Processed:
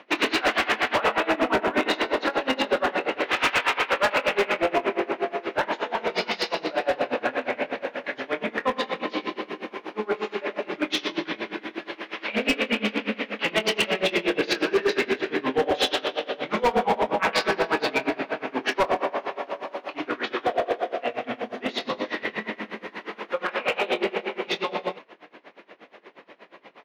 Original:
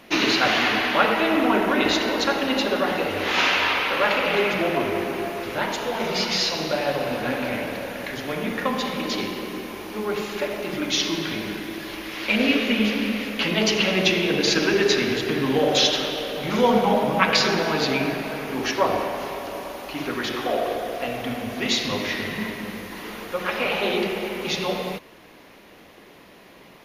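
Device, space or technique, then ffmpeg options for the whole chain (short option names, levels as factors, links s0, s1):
helicopter radio: -filter_complex "[0:a]highpass=340,lowpass=2700,aeval=exprs='val(0)*pow(10,-24*(0.5-0.5*cos(2*PI*8.4*n/s))/20)':c=same,asoftclip=type=hard:threshold=0.075,asettb=1/sr,asplit=3[s0][s1][s2];[s0]atrim=end=21.424[s3];[s1]atrim=start=21.42:end=22.16,asetpts=PTS-STARTPTS,afade=t=in:d=0.004:c=qsin,afade=t=out:st=0.736:d=0.004:c=qsin,equalizer=f=2400:t=o:w=0.78:g=-6[s4];[s2]atrim=start=22.156[s5];[s3][s4]acrossfade=d=0.004:c1=hsin:c2=qsin[s6];[s6][s5]acrossfade=d=0.004:c1=qsin:c2=hsin,asplit=2[s7][s8];[s8]adelay=23,volume=0.224[s9];[s7][s9]amix=inputs=2:normalize=0,volume=2.11"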